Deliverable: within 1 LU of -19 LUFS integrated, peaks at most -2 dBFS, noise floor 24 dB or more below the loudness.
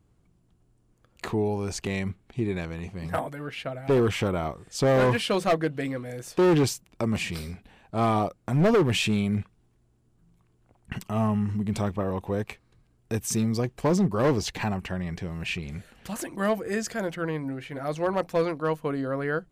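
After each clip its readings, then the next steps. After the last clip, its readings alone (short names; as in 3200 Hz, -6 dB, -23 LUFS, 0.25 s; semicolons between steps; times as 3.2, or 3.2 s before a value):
clipped 1.4%; flat tops at -17.0 dBFS; loudness -27.0 LUFS; peak -17.0 dBFS; loudness target -19.0 LUFS
-> clip repair -17 dBFS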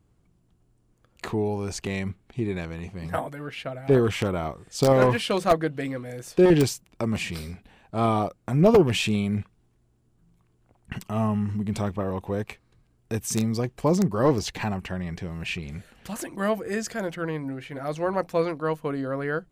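clipped 0.0%; loudness -26.0 LUFS; peak -8.0 dBFS; loudness target -19.0 LUFS
-> gain +7 dB; limiter -2 dBFS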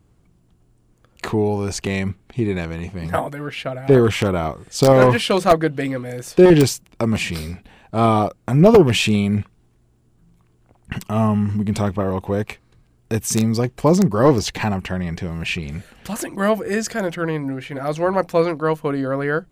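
loudness -19.0 LUFS; peak -2.0 dBFS; noise floor -58 dBFS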